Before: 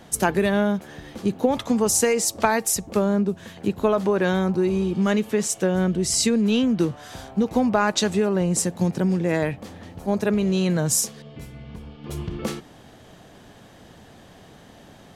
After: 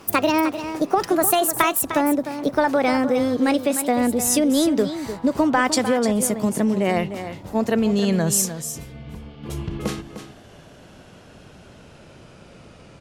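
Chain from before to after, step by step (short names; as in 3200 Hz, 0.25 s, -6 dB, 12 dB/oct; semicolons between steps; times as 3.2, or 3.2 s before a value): speed glide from 157% -> 76%; on a send: echo 0.303 s -10.5 dB; on the sum: gain +1.5 dB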